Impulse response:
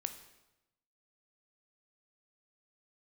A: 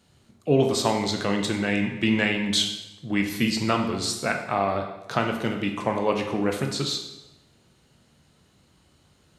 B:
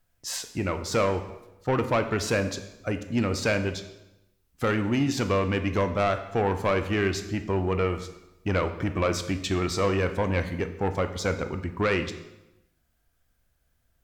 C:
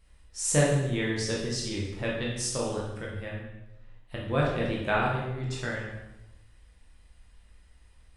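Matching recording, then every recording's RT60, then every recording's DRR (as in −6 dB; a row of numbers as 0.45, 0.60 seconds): B; 0.95, 0.95, 0.95 seconds; 3.0, 8.0, −4.5 decibels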